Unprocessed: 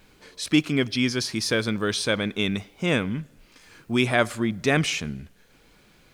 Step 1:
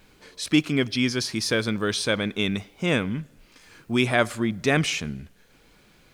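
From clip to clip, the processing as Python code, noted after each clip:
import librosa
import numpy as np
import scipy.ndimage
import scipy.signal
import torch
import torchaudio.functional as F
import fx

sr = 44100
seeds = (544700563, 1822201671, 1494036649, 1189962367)

y = x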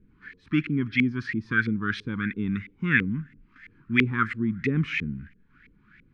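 y = fx.filter_lfo_lowpass(x, sr, shape='saw_up', hz=3.0, low_hz=450.0, high_hz=2200.0, q=6.0)
y = scipy.signal.sosfilt(scipy.signal.cheby1(2, 1.0, [240.0, 1800.0], 'bandstop', fs=sr, output='sos'), y)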